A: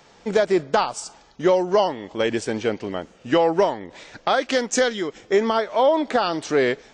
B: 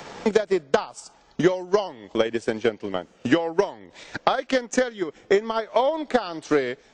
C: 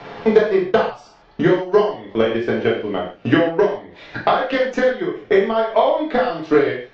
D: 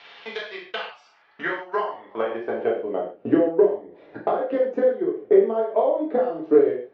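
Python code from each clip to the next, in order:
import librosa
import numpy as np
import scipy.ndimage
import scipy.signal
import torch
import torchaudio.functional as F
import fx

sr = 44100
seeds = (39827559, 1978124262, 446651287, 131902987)

y1 = fx.transient(x, sr, attack_db=12, sustain_db=-4)
y1 = fx.band_squash(y1, sr, depth_pct=70)
y1 = y1 * librosa.db_to_amplitude(-8.5)
y2 = scipy.signal.sosfilt(scipy.signal.bessel(6, 3000.0, 'lowpass', norm='mag', fs=sr, output='sos'), y1)
y2 = fx.rev_gated(y2, sr, seeds[0], gate_ms=170, shape='falling', drr_db=-4.0)
y2 = y2 * librosa.db_to_amplitude(1.0)
y3 = fx.filter_sweep_bandpass(y2, sr, from_hz=3200.0, to_hz=410.0, start_s=0.61, end_s=3.28, q=1.7)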